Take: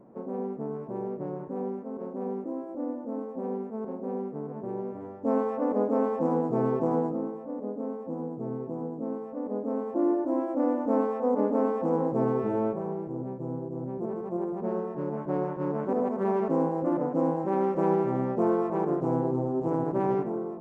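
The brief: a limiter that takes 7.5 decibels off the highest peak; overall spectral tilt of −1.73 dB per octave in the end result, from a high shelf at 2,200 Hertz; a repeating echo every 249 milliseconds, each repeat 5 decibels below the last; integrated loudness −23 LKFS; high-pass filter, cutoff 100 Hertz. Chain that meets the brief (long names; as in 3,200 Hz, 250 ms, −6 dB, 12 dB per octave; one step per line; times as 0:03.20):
high-pass filter 100 Hz
high-shelf EQ 2,200 Hz +4 dB
brickwall limiter −19 dBFS
repeating echo 249 ms, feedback 56%, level −5 dB
level +6.5 dB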